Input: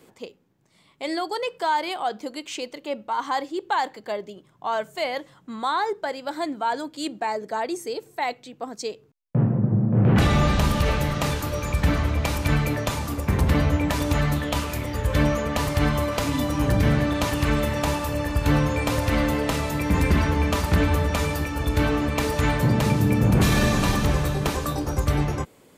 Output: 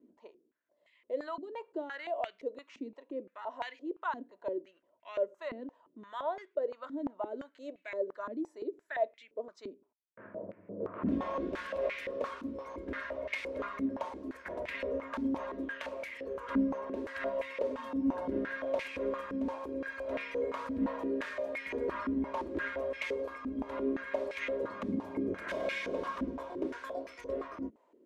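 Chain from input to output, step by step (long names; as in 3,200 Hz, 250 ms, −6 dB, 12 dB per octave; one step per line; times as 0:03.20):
flat-topped bell 820 Hz +12 dB 1 octave
phaser with its sweep stopped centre 360 Hz, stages 4
wrong playback speed 48 kHz file played as 44.1 kHz
band-pass on a step sequencer 5.8 Hz 250–2,200 Hz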